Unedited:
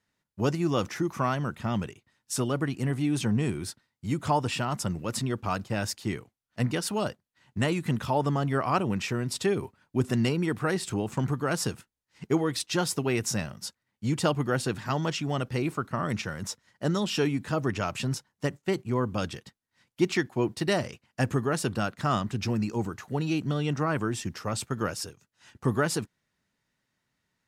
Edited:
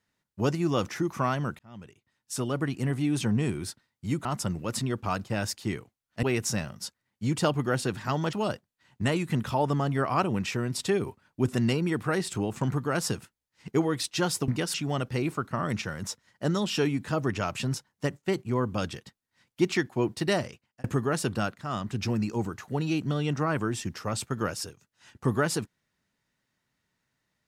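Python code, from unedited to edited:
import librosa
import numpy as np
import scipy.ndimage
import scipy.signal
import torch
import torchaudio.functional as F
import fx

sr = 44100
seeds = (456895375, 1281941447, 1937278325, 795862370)

y = fx.edit(x, sr, fx.fade_in_span(start_s=1.59, length_s=1.09),
    fx.cut(start_s=4.25, length_s=0.4),
    fx.swap(start_s=6.63, length_s=0.26, other_s=13.04, other_length_s=2.1),
    fx.fade_out_span(start_s=20.76, length_s=0.48),
    fx.fade_in_from(start_s=21.98, length_s=0.4, floor_db=-13.0), tone=tone)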